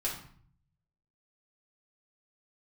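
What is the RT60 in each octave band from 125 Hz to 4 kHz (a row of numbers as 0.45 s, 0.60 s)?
1.1 s, 0.85 s, 0.50 s, 0.55 s, 0.50 s, 0.45 s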